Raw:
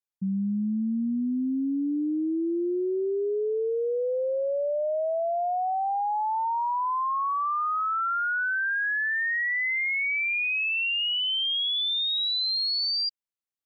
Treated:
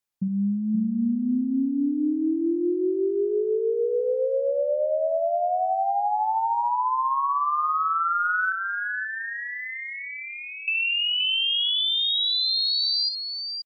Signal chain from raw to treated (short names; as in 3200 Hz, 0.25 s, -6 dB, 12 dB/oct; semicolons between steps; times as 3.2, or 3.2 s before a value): 8.52–10.68 Bessel low-pass 730 Hz, order 2; compressor, threshold -30 dBFS, peak gain reduction 4.5 dB; tapped delay 60/526 ms -11.5/-7 dB; gain +6.5 dB